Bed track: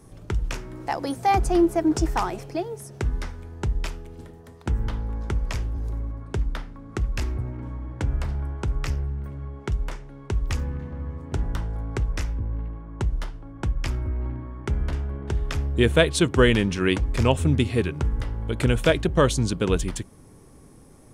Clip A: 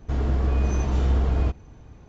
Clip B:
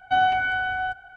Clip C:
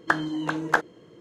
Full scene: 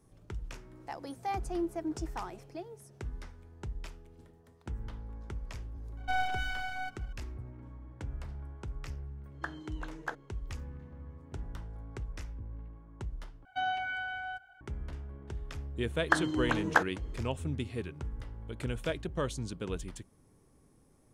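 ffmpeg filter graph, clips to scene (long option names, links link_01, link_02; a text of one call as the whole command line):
ffmpeg -i bed.wav -i cue0.wav -i cue1.wav -i cue2.wav -filter_complex "[2:a]asplit=2[link_01][link_02];[3:a]asplit=2[link_03][link_04];[0:a]volume=-14.5dB[link_05];[link_01]aeval=exprs='max(val(0),0)':channel_layout=same[link_06];[link_02]highshelf=frequency=2100:gain=7.5[link_07];[link_05]asplit=2[link_08][link_09];[link_08]atrim=end=13.454[link_10];[link_07]atrim=end=1.16,asetpts=PTS-STARTPTS,volume=-14dB[link_11];[link_09]atrim=start=14.606[link_12];[link_06]atrim=end=1.16,asetpts=PTS-STARTPTS,volume=-7.5dB,afade=type=in:duration=0.004:curve=hsin,afade=type=out:start_time=1.156:duration=0.004:curve=hsin,adelay=5970[link_13];[link_03]atrim=end=1.2,asetpts=PTS-STARTPTS,volume=-16.5dB,afade=type=in:duration=0.004:curve=hsin,afade=type=out:start_time=1.196:duration=0.004:curve=hsin,adelay=9340[link_14];[link_04]atrim=end=1.2,asetpts=PTS-STARTPTS,volume=-3.5dB,afade=type=in:duration=0.004:curve=hsin,afade=type=out:start_time=1.196:duration=0.004:curve=hsin,adelay=16020[link_15];[link_10][link_11]acrossfade=duration=0.004:curve1=hsin:curve2=hsin[link_16];[link_16][link_12]acrossfade=duration=0.004:curve1=hsin:curve2=hsin[link_17];[link_17][link_13][link_14][link_15]amix=inputs=4:normalize=0" out.wav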